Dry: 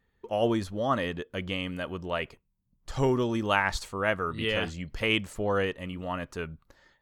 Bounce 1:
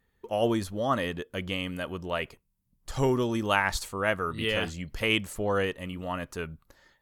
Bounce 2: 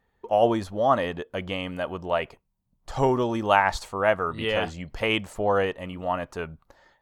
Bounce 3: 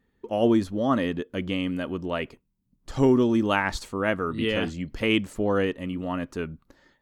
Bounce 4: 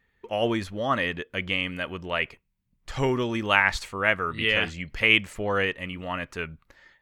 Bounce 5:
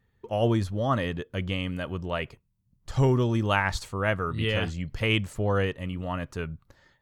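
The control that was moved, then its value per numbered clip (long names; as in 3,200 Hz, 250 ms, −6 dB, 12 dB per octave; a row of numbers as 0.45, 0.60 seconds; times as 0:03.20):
parametric band, centre frequency: 13,000, 760, 270, 2,200, 110 Hertz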